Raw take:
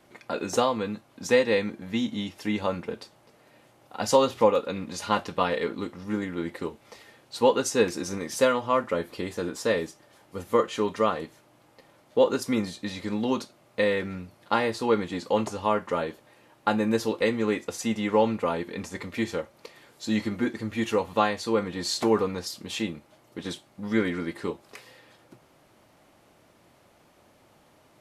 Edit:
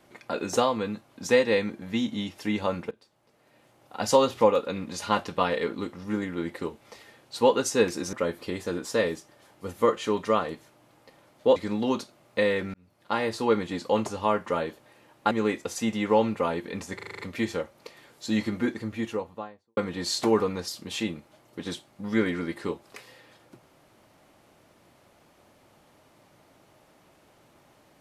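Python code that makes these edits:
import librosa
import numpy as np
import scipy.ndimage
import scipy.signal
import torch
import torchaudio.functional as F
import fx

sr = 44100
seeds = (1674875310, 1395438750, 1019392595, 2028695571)

y = fx.studio_fade_out(x, sr, start_s=20.4, length_s=1.16)
y = fx.edit(y, sr, fx.fade_in_from(start_s=2.91, length_s=1.08, floor_db=-23.0),
    fx.cut(start_s=8.13, length_s=0.71),
    fx.cut(start_s=12.27, length_s=0.7),
    fx.fade_in_span(start_s=14.15, length_s=0.6),
    fx.cut(start_s=16.72, length_s=0.62),
    fx.stutter(start_s=18.98, slice_s=0.04, count=7), tone=tone)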